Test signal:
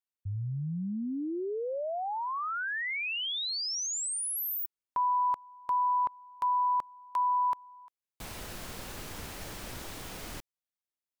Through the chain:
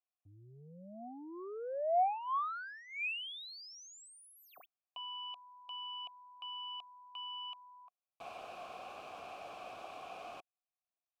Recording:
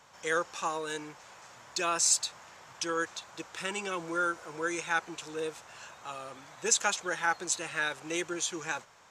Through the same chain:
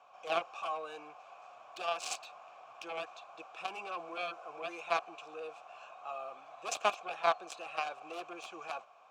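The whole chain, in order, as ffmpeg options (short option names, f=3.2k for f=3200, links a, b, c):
-filter_complex "[0:a]aeval=exprs='0.266*(cos(1*acos(clip(val(0)/0.266,-1,1)))-cos(1*PI/2))+0.0596*(cos(7*acos(clip(val(0)/0.266,-1,1)))-cos(7*PI/2))':c=same,asplit=3[a][b][c];[a]bandpass=f=730:t=q:w=8,volume=0dB[d];[b]bandpass=f=1.09k:t=q:w=8,volume=-6dB[e];[c]bandpass=f=2.44k:t=q:w=8,volume=-9dB[f];[d][e][f]amix=inputs=3:normalize=0,volume=13.5dB"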